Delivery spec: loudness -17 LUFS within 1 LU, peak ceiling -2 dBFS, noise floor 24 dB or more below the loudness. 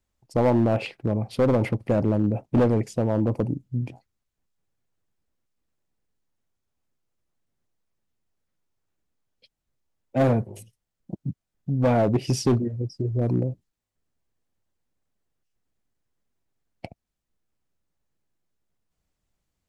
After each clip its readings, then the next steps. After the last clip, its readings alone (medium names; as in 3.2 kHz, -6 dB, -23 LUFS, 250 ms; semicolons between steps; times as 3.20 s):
clipped samples 1.1%; clipping level -15.0 dBFS; loudness -24.5 LUFS; peak level -15.0 dBFS; loudness target -17.0 LUFS
-> clip repair -15 dBFS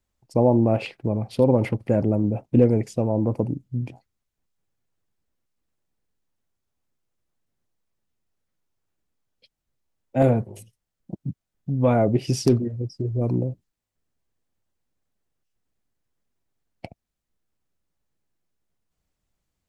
clipped samples 0.0%; loudness -22.5 LUFS; peak level -6.0 dBFS; loudness target -17.0 LUFS
-> trim +5.5 dB; peak limiter -2 dBFS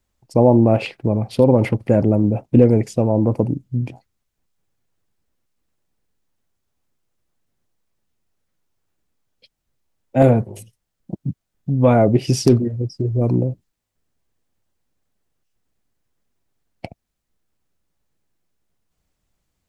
loudness -17.5 LUFS; peak level -2.0 dBFS; noise floor -78 dBFS